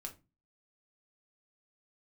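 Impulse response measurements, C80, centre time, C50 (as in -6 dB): 22.0 dB, 10 ms, 14.5 dB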